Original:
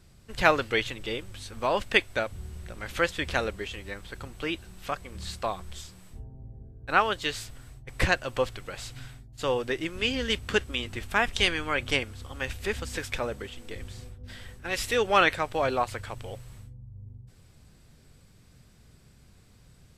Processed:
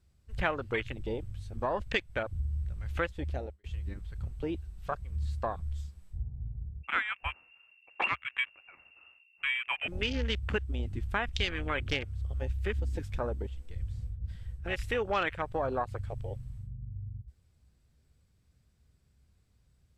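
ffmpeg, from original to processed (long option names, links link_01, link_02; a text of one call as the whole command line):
ffmpeg -i in.wav -filter_complex "[0:a]asettb=1/sr,asplit=3[link_01][link_02][link_03];[link_01]atrim=end=6.834[link_04];[link_02]atrim=start=6.83:end=9.88,asetpts=PTS-STARTPTS,afade=type=in:duration=0.004:curve=qsin,afade=type=out:start_time=3.046:duration=0.004:curve=qsin,lowpass=frequency=2400:width_type=q:width=0.5098,lowpass=frequency=2400:width_type=q:width=0.6013,lowpass=frequency=2400:width_type=q:width=0.9,lowpass=frequency=2400:width_type=q:width=2.563,afreqshift=-2800[link_05];[link_03]atrim=start=9.876[link_06];[link_04][link_05]acrossfade=duration=0.004:curve1=hsin:curve2=qsin[link_07];[link_07][link_06]acrossfade=duration=0.004:curve1=qsin:curve2=hsin,asplit=2[link_08][link_09];[link_08]atrim=end=3.64,asetpts=PTS-STARTPTS,afade=type=out:start_time=3.07:duration=0.57[link_10];[link_09]atrim=start=3.64,asetpts=PTS-STARTPTS,afade=type=in:duration=0.004:curve=hsin[link_11];[link_10][link_11]concat=n=2:v=0:a=1,afwtdn=0.0282,equalizer=frequency=66:width_type=o:width=0.89:gain=12,acompressor=threshold=-29dB:ratio=3" out.wav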